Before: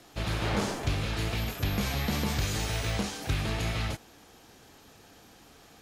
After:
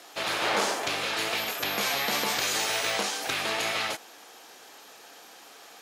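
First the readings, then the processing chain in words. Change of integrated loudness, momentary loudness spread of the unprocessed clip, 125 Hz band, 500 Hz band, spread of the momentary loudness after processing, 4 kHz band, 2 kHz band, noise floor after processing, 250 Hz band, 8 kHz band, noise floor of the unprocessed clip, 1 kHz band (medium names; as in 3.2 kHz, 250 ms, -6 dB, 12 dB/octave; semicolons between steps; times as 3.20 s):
+4.0 dB, 3 LU, -18.0 dB, +4.0 dB, 3 LU, +7.5 dB, +7.5 dB, -50 dBFS, -6.5 dB, +7.5 dB, -56 dBFS, +7.0 dB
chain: high-pass 530 Hz 12 dB/octave; trim +7.5 dB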